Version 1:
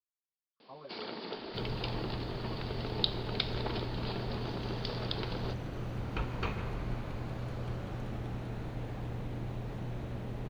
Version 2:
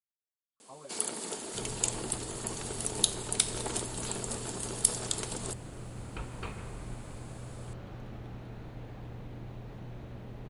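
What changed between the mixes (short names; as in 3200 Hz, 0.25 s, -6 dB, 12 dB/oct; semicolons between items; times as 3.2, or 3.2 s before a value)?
first sound: remove steep low-pass 4900 Hz 96 dB/oct; second sound -5.0 dB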